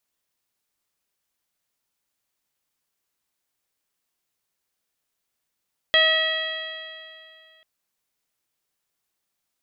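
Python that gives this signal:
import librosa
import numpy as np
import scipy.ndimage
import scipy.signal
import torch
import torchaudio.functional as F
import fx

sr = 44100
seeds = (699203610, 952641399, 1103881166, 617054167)

y = fx.additive_stiff(sr, length_s=1.69, hz=635.0, level_db=-21.5, upper_db=(-7, 4.5, -6.5, 5.0, -10, -20.0), decay_s=2.47, stiffness=0.0025)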